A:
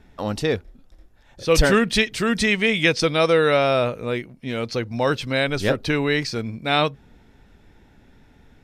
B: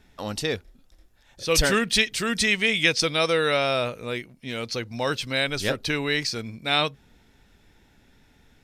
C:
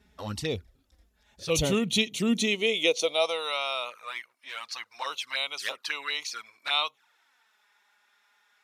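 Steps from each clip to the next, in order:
high shelf 2200 Hz +10.5 dB; gain -6.5 dB
high-pass sweep 66 Hz -> 1100 Hz, 1.36–3.56; envelope flanger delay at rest 5.1 ms, full sweep at -22 dBFS; gain -2.5 dB

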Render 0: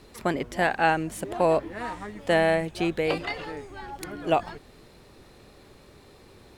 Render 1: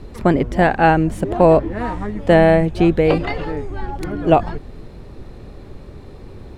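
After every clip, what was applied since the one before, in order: tilt -3 dB/oct; gain +7.5 dB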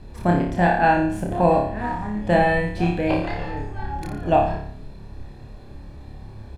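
comb 1.2 ms, depth 44%; on a send: flutter echo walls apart 4.9 m, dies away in 0.58 s; on the sum: gain -7.5 dB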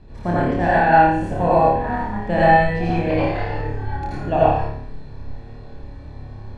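air absorption 86 m; reverb RT60 0.50 s, pre-delay 72 ms, DRR -6.5 dB; gain -4 dB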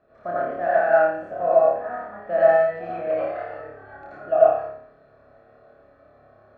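double band-pass 910 Hz, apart 0.96 oct; gain +3.5 dB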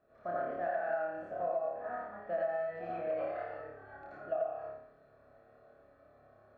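compressor 16:1, threshold -22 dBFS, peak gain reduction 15 dB; gain -8.5 dB

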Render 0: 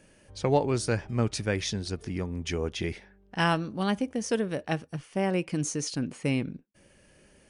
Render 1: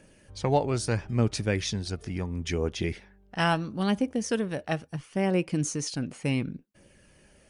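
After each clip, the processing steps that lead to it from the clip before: phaser 0.74 Hz, delay 1.6 ms, feedback 28%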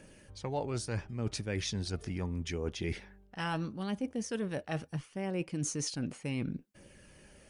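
notch 670 Hz, Q 21; reverse; compressor 6:1, threshold -33 dBFS, peak gain reduction 14 dB; reverse; gain +1 dB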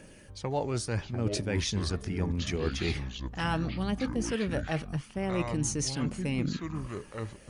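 echoes that change speed 0.51 s, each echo -6 st, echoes 2, each echo -6 dB; gain +4 dB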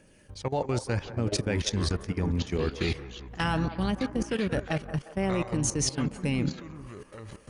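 level quantiser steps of 16 dB; band-limited delay 0.178 s, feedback 53%, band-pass 800 Hz, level -11 dB; gain +5.5 dB

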